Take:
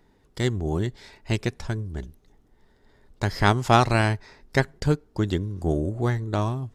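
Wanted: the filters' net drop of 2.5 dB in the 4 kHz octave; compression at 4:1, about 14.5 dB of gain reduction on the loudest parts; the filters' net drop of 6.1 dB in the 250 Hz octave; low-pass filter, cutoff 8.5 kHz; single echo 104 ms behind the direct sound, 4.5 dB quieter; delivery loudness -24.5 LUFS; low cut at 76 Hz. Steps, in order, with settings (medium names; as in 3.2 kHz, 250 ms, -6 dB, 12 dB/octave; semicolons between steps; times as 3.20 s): high-pass 76 Hz; low-pass 8.5 kHz; peaking EQ 250 Hz -9 dB; peaking EQ 4 kHz -3 dB; compression 4:1, threshold -32 dBFS; delay 104 ms -4.5 dB; trim +11 dB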